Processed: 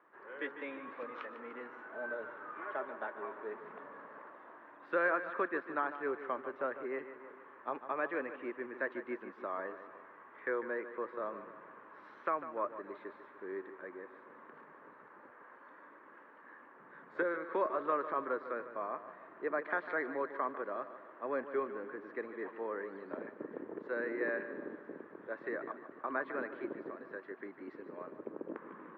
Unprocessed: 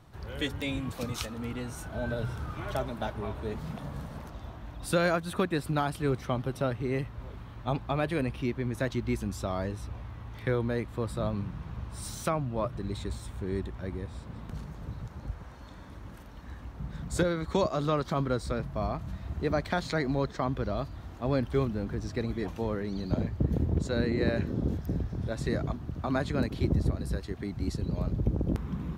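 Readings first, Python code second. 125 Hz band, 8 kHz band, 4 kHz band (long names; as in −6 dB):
below −30 dB, below −35 dB, below −20 dB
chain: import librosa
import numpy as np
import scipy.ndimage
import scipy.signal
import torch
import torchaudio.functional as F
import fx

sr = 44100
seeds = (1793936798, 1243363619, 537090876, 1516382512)

y = fx.cabinet(x, sr, low_hz=350.0, low_slope=24, high_hz=2000.0, hz=(730.0, 1100.0, 1700.0), db=(-7, 5, 7))
y = fx.echo_feedback(y, sr, ms=149, feedback_pct=53, wet_db=-12)
y = y * librosa.db_to_amplitude(-4.5)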